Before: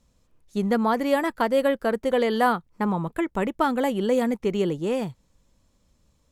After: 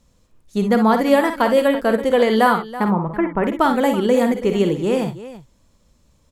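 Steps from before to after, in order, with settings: 2.88–3.44 LPF 2100 Hz 24 dB/oct; tapped delay 50/64/329 ms -9/-10.5/-15 dB; gain +5.5 dB

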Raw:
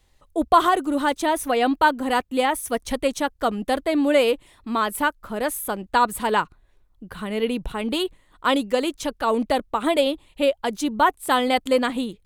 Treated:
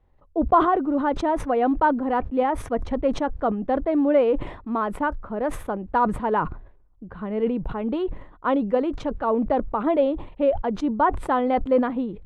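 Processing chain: LPF 1100 Hz 12 dB/oct; sustainer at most 91 dB/s

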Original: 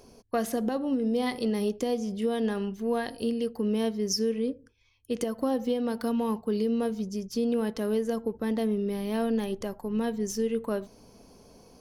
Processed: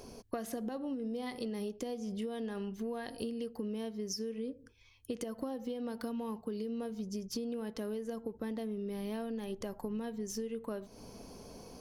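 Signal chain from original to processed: compressor 10:1, threshold -39 dBFS, peak gain reduction 16.5 dB; gain +3.5 dB

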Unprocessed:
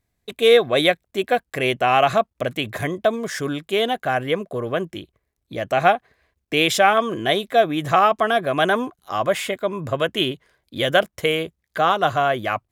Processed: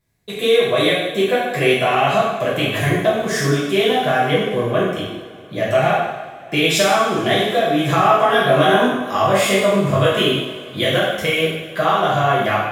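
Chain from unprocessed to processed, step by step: compressor, threshold -19 dBFS, peak gain reduction 9.5 dB; 7.96–10.21 doubler 21 ms -2 dB; reverb, pre-delay 3 ms, DRR -8 dB; gain -1 dB

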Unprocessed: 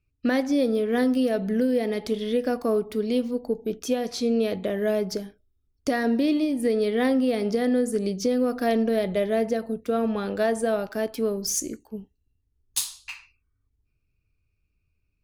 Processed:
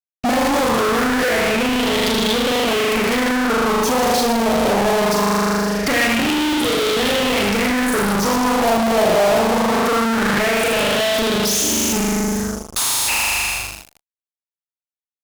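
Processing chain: 6.29–7.43 low shelf 360 Hz -5 dB; on a send: flutter echo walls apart 6.8 m, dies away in 1.3 s; on the sum: tube stage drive 31 dB, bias 0.25; small resonant body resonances 860/1300/2600 Hz, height 8 dB, ringing for 0.1 s; fuzz box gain 55 dB, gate -57 dBFS; LFO bell 0.22 Hz 710–3500 Hz +9 dB; gain -5 dB

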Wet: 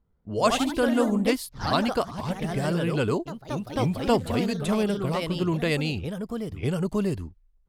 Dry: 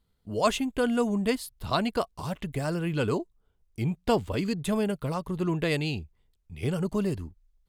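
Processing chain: low-pass opened by the level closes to 1200 Hz, open at -26.5 dBFS; echoes that change speed 0.128 s, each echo +2 st, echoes 3, each echo -6 dB; gain +2 dB

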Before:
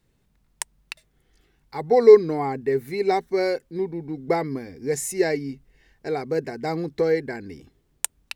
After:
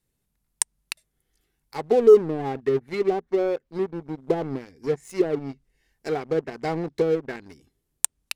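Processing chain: treble ducked by the level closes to 520 Hz, closed at -17.5 dBFS; bell 12000 Hz +14.5 dB 1.3 oct; sample leveller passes 2; gain -7 dB

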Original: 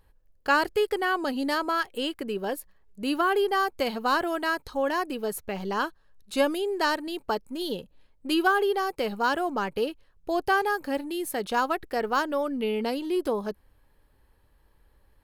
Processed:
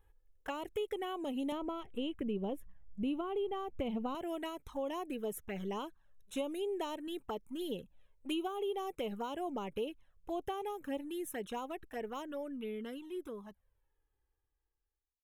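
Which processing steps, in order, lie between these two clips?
ending faded out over 4.91 s; 1.52–4.15 tone controls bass +12 dB, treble -12 dB; compressor 6:1, threshold -27 dBFS, peak gain reduction 9.5 dB; envelope flanger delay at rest 2.5 ms, full sweep at -27 dBFS; Butterworth band-stop 4600 Hz, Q 2.7; gain -5 dB

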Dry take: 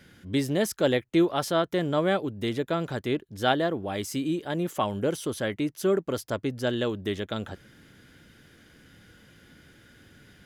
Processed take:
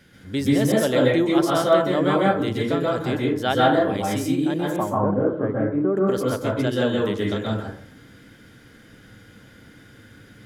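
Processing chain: 4.76–5.97 LPF 1400 Hz 24 dB/oct; plate-style reverb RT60 0.56 s, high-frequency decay 0.4×, pre-delay 0.115 s, DRR -4.5 dB

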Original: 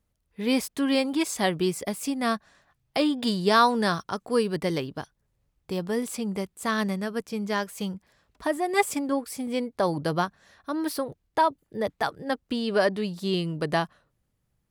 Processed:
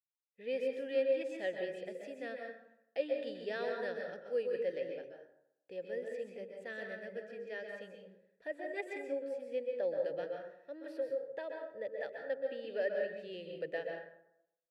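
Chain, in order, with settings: expander -56 dBFS; vowel filter e; plate-style reverb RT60 0.78 s, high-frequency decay 0.5×, pre-delay 0.115 s, DRR 1.5 dB; gain -4.5 dB

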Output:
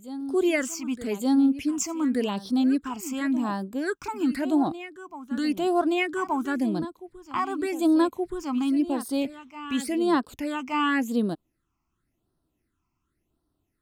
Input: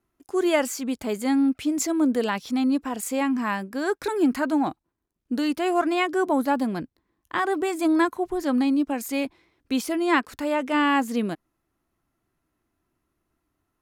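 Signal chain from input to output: phaser stages 8, 0.91 Hz, lowest notch 490–2300 Hz; reverse echo 1.174 s -13.5 dB

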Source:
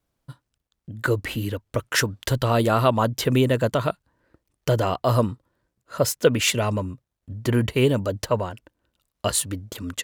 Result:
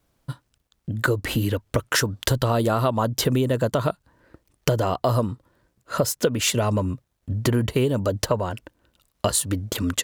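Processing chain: dynamic EQ 2300 Hz, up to -6 dB, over -40 dBFS, Q 1.5; compressor 6:1, threshold -27 dBFS, peak gain reduction 15 dB; gain +8.5 dB

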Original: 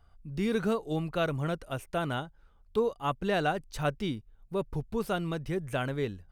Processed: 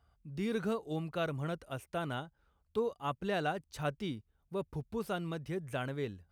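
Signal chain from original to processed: HPF 47 Hz 24 dB/oct; gain -5.5 dB

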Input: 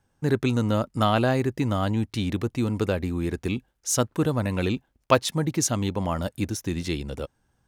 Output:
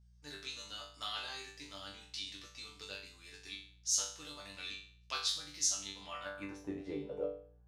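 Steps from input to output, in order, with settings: resonator bank G2 fifth, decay 0.48 s; band-pass sweep 4800 Hz -> 530 Hz, 5.99–6.75; buzz 60 Hz, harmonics 3, -77 dBFS -9 dB/oct; gain +14 dB

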